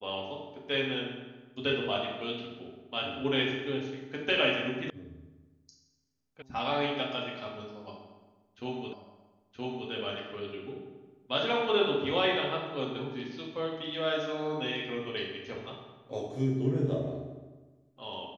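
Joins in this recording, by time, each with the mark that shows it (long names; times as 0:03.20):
0:04.90: cut off before it has died away
0:06.42: cut off before it has died away
0:08.93: the same again, the last 0.97 s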